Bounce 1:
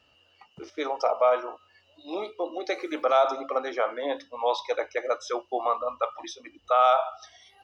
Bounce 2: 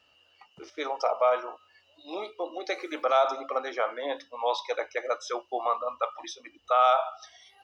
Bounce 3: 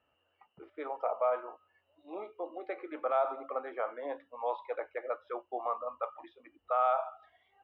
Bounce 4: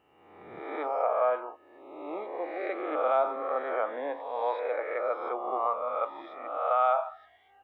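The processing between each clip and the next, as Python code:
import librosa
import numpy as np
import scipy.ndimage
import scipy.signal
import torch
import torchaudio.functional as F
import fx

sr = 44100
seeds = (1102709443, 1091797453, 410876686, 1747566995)

y1 = fx.low_shelf(x, sr, hz=390.0, db=-8.0)
y2 = scipy.ndimage.gaussian_filter1d(y1, 4.0, mode='constant')
y2 = F.gain(torch.from_numpy(y2), -5.5).numpy()
y3 = fx.spec_swells(y2, sr, rise_s=1.17)
y3 = F.gain(torch.from_numpy(y3), 2.5).numpy()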